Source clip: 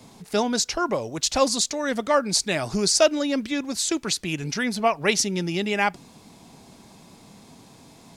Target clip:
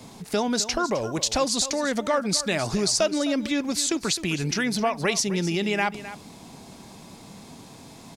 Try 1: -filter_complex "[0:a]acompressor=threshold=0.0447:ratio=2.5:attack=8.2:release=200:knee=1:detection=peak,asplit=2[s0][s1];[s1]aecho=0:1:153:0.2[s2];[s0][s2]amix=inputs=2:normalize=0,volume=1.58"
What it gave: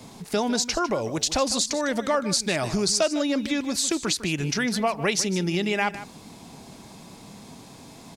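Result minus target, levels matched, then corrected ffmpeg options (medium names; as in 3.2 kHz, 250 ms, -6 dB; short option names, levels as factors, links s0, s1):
echo 107 ms early
-filter_complex "[0:a]acompressor=threshold=0.0447:ratio=2.5:attack=8.2:release=200:knee=1:detection=peak,asplit=2[s0][s1];[s1]aecho=0:1:260:0.2[s2];[s0][s2]amix=inputs=2:normalize=0,volume=1.58"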